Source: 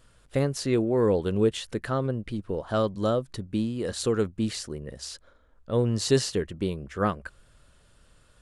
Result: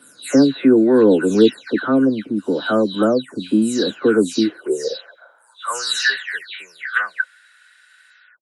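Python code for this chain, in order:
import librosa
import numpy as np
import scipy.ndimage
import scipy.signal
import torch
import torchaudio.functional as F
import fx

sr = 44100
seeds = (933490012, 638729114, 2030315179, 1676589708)

y = fx.spec_delay(x, sr, highs='early', ms=314)
y = fx.small_body(y, sr, hz=(1500.0, 3900.0), ring_ms=30, db=14)
y = fx.filter_sweep_highpass(y, sr, from_hz=260.0, to_hz=1900.0, start_s=4.33, end_s=6.17, q=6.1)
y = y * 10.0 ** (6.0 / 20.0)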